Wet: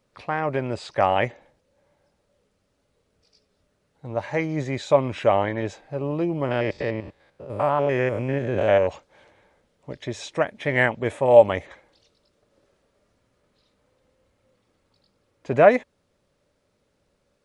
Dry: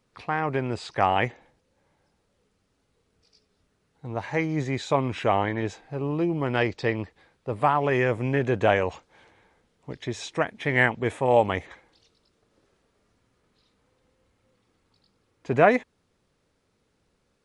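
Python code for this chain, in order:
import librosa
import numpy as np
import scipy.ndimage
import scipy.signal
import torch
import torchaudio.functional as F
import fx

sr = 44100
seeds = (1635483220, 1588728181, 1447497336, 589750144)

y = fx.spec_steps(x, sr, hold_ms=100, at=(6.45, 8.86), fade=0.02)
y = fx.peak_eq(y, sr, hz=580.0, db=10.5, octaves=0.22)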